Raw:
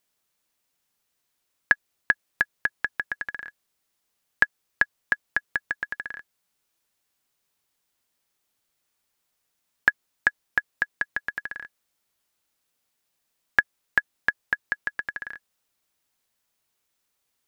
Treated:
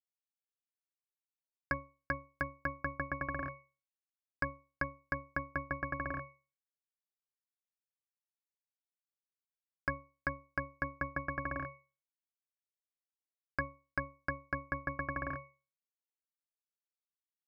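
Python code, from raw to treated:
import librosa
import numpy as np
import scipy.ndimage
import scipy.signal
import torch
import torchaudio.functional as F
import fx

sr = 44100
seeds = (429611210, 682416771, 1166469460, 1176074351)

y = fx.leveller(x, sr, passes=5)
y = np.where(np.abs(y) >= 10.0 ** (-20.0 / 20.0), y, 0.0)
y = fx.octave_resonator(y, sr, note='C#', decay_s=0.31)
y = fx.env_lowpass_down(y, sr, base_hz=1700.0, full_db=-47.0)
y = F.gain(torch.from_numpy(y), 11.0).numpy()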